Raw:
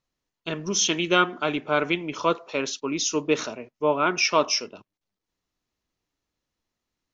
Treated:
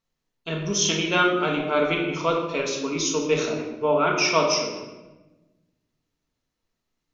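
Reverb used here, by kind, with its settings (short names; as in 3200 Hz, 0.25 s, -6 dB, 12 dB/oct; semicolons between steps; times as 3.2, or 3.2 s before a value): shoebox room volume 650 m³, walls mixed, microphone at 1.6 m; gain -2 dB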